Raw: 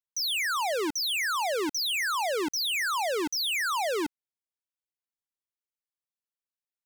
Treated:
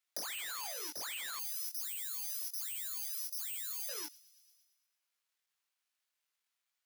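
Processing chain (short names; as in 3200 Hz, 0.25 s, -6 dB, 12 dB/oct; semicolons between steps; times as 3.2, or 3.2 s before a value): careless resampling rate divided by 8×, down none, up zero stuff; HPF 1100 Hz 6 dB/oct; high shelf 4200 Hz -9.5 dB; compressor 10:1, threshold -33 dBFS, peak gain reduction 12 dB; chorus 0.99 Hz, delay 19.5 ms, depth 3.1 ms; 1.39–3.89 differentiator; thin delay 0.113 s, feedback 53%, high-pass 3300 Hz, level -18 dB; mismatched tape noise reduction encoder only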